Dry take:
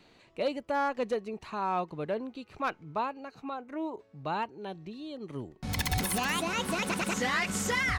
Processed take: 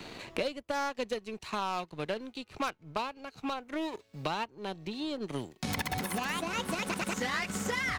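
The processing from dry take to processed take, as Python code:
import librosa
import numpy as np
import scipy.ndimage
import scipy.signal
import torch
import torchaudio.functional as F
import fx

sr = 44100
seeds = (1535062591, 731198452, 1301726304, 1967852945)

y = fx.power_curve(x, sr, exponent=1.4)
y = fx.band_squash(y, sr, depth_pct=100)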